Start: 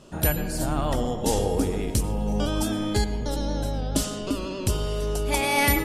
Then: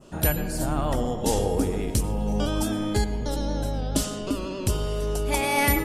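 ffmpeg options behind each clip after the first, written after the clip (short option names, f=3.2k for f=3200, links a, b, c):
-af "adynamicequalizer=threshold=0.00708:dfrequency=4000:dqfactor=0.96:tfrequency=4000:tqfactor=0.96:attack=5:release=100:ratio=0.375:range=2.5:mode=cutabove:tftype=bell"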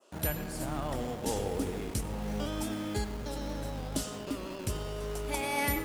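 -filter_complex "[0:a]highpass=f=50:p=1,acrossover=split=360[a][b];[a]acrusher=bits=5:mix=0:aa=0.000001[c];[c][b]amix=inputs=2:normalize=0,volume=-8.5dB"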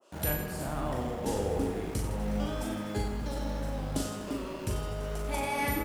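-filter_complex "[0:a]asplit=2[a][b];[b]aecho=0:1:40|92|159.6|247.5|361.7:0.631|0.398|0.251|0.158|0.1[c];[a][c]amix=inputs=2:normalize=0,adynamicequalizer=threshold=0.00398:dfrequency=2400:dqfactor=0.7:tfrequency=2400:tqfactor=0.7:attack=5:release=100:ratio=0.375:range=3.5:mode=cutabove:tftype=highshelf"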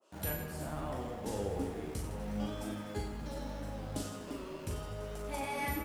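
-af "flanger=delay=9.3:depth=3.9:regen=49:speed=0.78:shape=sinusoidal,volume=-2dB"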